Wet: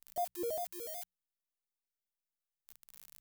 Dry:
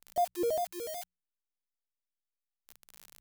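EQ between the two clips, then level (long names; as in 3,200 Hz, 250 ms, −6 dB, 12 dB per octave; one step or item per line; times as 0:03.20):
high-shelf EQ 8,400 Hz +9 dB
−7.0 dB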